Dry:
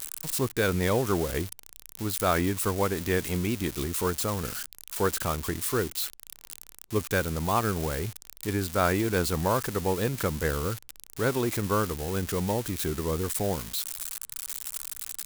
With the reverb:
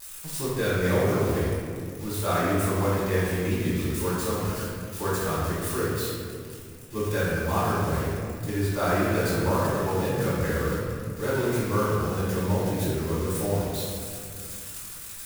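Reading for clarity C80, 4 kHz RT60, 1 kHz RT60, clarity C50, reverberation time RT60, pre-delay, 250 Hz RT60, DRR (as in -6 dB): 0.0 dB, 1.3 s, 2.1 s, -2.5 dB, 2.3 s, 3 ms, 3.0 s, -10.0 dB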